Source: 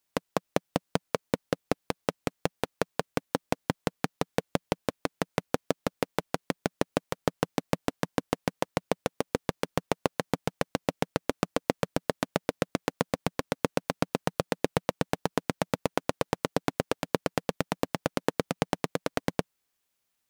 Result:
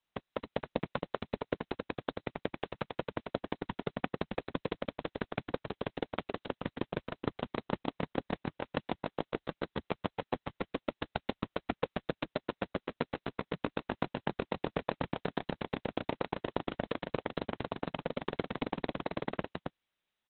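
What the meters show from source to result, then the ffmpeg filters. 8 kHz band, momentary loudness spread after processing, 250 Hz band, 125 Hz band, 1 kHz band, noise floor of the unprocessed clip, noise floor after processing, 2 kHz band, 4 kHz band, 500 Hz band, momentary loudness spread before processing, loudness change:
below −40 dB, 3 LU, −6.0 dB, −6.5 dB, −6.0 dB, −80 dBFS, below −85 dBFS, −6.0 dB, −7.0 dB, −6.5 dB, 3 LU, −6.5 dB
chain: -af "highshelf=frequency=5300:gain=6,aecho=1:1:271:0.596,volume=-7.5dB" -ar 48000 -c:a libopus -b:a 6k

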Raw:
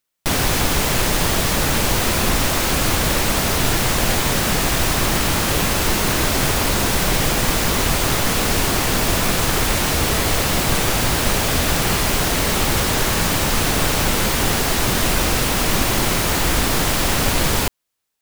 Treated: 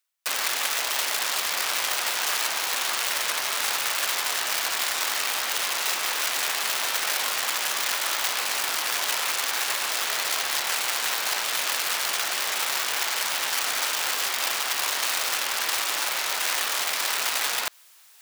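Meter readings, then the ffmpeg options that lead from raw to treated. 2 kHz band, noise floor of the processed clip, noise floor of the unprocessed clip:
−4.5 dB, −29 dBFS, −20 dBFS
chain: -filter_complex "[0:a]acrossover=split=6100[link_01][link_02];[link_02]acompressor=threshold=-37dB:ratio=4:attack=1:release=60[link_03];[link_01][link_03]amix=inputs=2:normalize=0,aeval=exprs='(mod(4.73*val(0)+1,2)-1)/4.73':channel_layout=same,highpass=840,areverse,acompressor=mode=upward:threshold=-25dB:ratio=2.5,areverse,volume=-5dB"

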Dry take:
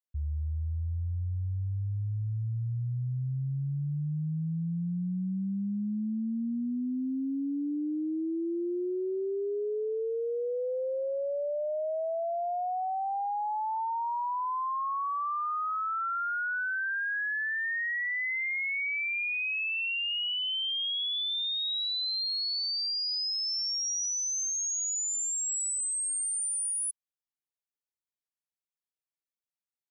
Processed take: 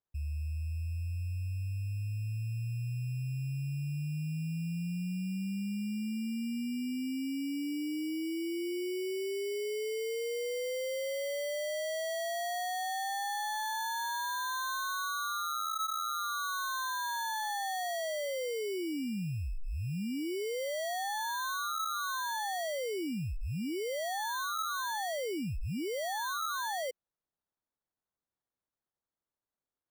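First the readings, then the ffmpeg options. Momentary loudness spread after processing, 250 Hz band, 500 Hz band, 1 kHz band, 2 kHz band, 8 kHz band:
3 LU, −2.5 dB, −1.5 dB, −1.5 dB, −6.0 dB, −10.5 dB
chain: -af "acrusher=samples=17:mix=1:aa=0.000001,volume=-3.5dB"

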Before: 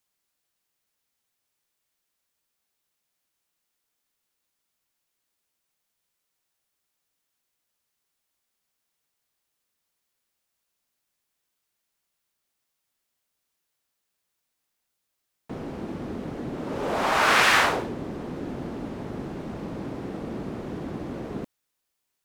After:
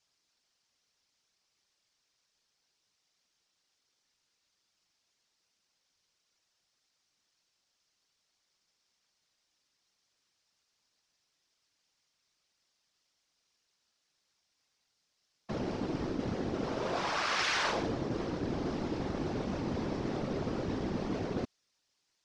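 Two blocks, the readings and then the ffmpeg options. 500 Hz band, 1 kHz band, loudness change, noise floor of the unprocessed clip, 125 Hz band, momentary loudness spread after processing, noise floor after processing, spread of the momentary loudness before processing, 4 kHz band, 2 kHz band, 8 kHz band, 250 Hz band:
−4.0 dB, −10.0 dB, −7.5 dB, −80 dBFS, −1.5 dB, 6 LU, −80 dBFS, 17 LU, −8.0 dB, −11.5 dB, −9.0 dB, −2.5 dB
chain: -af "acontrast=90,afftfilt=real='hypot(re,im)*cos(2*PI*random(0))':imag='hypot(re,im)*sin(2*PI*random(1))':win_size=512:overlap=0.75,areverse,acompressor=threshold=-30dB:ratio=8,areverse,lowpass=frequency=5400:width_type=q:width=2.5"

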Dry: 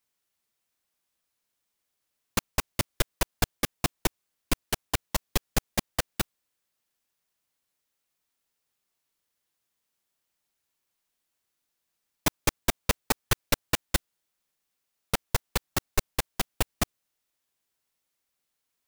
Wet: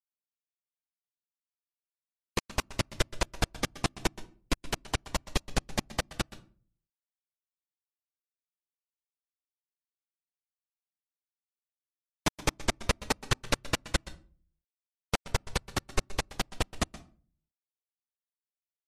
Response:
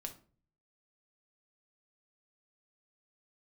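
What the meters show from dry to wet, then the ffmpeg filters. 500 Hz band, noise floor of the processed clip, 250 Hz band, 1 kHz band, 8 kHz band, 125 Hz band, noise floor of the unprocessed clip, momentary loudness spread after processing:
−1.5 dB, below −85 dBFS, −2.0 dB, −2.0 dB, −5.0 dB, −2.0 dB, −81 dBFS, 5 LU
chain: -filter_complex "[0:a]aeval=exprs='val(0)+0.00126*sin(2*PI*910*n/s)':channel_layout=same,lowpass=7400,aeval=exprs='val(0)*gte(abs(val(0)),0.0251)':channel_layout=same,asplit=2[link_01][link_02];[1:a]atrim=start_sample=2205,adelay=124[link_03];[link_02][link_03]afir=irnorm=-1:irlink=0,volume=-13.5dB[link_04];[link_01][link_04]amix=inputs=2:normalize=0,volume=-1.5dB" -ar 32000 -c:a libmp3lame -b:a 56k

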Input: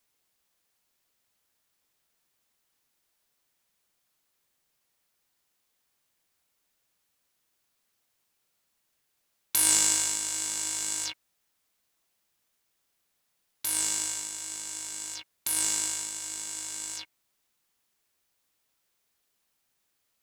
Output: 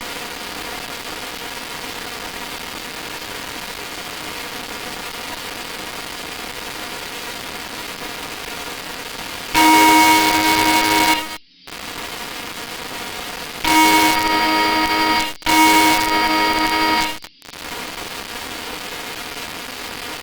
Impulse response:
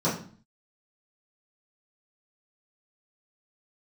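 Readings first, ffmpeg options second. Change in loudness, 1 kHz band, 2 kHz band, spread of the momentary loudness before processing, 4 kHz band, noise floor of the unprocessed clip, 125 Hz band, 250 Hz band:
+9.0 dB, +32.5 dB, +25.0 dB, 14 LU, +17.5 dB, −77 dBFS, +21.0 dB, +29.0 dB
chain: -filter_complex "[0:a]lowshelf=frequency=87:gain=-11,asplit=2[link_01][link_02];[link_02]acompressor=mode=upward:threshold=-28dB:ratio=2.5,volume=2.5dB[link_03];[link_01][link_03]amix=inputs=2:normalize=0,volume=12.5dB,asoftclip=hard,volume=-12.5dB,equalizer=frequency=64:width=0.34:gain=-12,aecho=1:1:4.2:0.81,asplit=2[link_04][link_05];[link_05]adelay=227.4,volume=-23dB,highshelf=frequency=4000:gain=-5.12[link_06];[link_04][link_06]amix=inputs=2:normalize=0[link_07];[1:a]atrim=start_sample=2205,asetrate=83790,aresample=44100[link_08];[link_07][link_08]afir=irnorm=-1:irlink=0,aresample=11025,aresample=44100,acrossover=split=3500[link_09][link_10];[link_10]acompressor=threshold=-39dB:ratio=4:attack=1:release=60[link_11];[link_09][link_11]amix=inputs=2:normalize=0,acrossover=split=180|3800[link_12][link_13][link_14];[link_13]acrusher=bits=4:dc=4:mix=0:aa=0.000001[link_15];[link_12][link_15][link_14]amix=inputs=3:normalize=0,alimiter=level_in=20dB:limit=-1dB:release=50:level=0:latency=1,volume=-3dB" -ar 48000 -c:a libopus -b:a 48k

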